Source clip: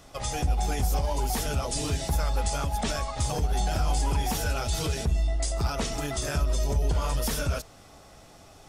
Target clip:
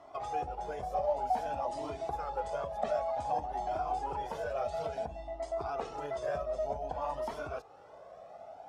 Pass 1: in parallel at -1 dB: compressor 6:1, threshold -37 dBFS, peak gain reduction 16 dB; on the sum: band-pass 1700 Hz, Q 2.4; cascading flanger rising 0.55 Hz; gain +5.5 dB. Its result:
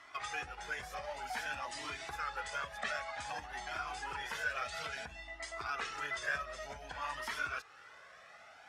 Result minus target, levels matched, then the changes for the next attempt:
2000 Hz band +16.0 dB
change: band-pass 690 Hz, Q 2.4

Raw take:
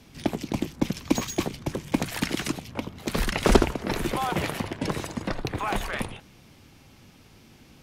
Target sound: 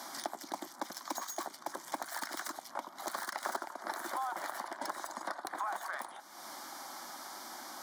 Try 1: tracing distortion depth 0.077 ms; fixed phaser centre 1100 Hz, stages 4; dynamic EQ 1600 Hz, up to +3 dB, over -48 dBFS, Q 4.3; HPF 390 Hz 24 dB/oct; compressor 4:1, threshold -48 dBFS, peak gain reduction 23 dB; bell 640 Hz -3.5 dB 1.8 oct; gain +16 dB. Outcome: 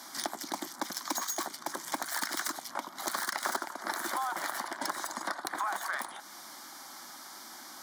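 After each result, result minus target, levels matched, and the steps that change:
compressor: peak gain reduction -8 dB; 500 Hz band -3.5 dB
change: compressor 4:1, threshold -59 dBFS, peak gain reduction 31.5 dB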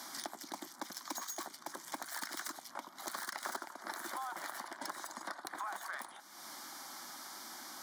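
500 Hz band -3.5 dB
change: bell 640 Hz +3.5 dB 1.8 oct

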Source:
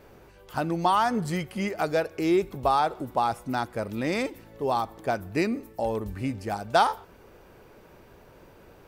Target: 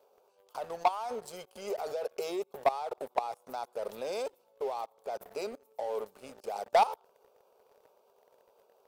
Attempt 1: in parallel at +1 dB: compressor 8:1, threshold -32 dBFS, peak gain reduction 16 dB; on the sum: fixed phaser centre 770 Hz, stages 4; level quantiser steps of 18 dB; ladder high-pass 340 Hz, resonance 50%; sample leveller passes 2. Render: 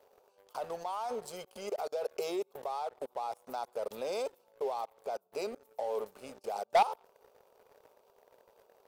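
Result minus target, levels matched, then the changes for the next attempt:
compressor: peak gain reduction +6 dB
change: compressor 8:1, threshold -25 dBFS, peak gain reduction 10 dB

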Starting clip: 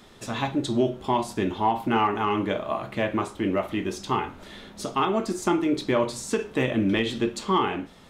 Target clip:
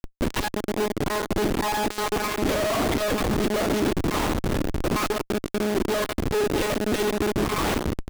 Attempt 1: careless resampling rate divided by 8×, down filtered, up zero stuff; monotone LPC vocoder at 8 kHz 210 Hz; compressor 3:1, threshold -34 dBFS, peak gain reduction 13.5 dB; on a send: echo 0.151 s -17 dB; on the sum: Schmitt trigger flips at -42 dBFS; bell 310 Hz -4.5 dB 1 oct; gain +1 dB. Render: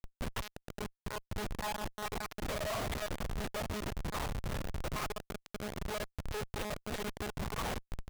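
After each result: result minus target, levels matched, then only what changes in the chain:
compressor: peak gain reduction +13.5 dB; 250 Hz band -3.5 dB
remove: compressor 3:1, threshold -34 dBFS, peak gain reduction 13.5 dB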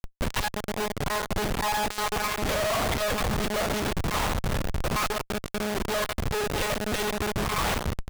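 250 Hz band -4.5 dB
change: bell 310 Hz +7.5 dB 1 oct

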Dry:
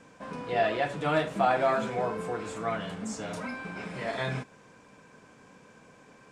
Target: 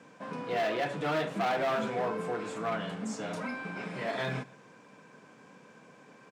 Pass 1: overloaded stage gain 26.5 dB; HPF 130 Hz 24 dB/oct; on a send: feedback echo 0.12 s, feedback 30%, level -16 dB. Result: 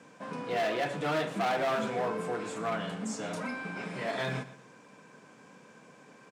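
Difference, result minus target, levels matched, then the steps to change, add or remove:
echo-to-direct +8 dB; 8000 Hz band +3.5 dB
add after HPF: bell 9300 Hz -4.5 dB 1.4 oct; change: feedback echo 0.12 s, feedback 30%, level -24 dB

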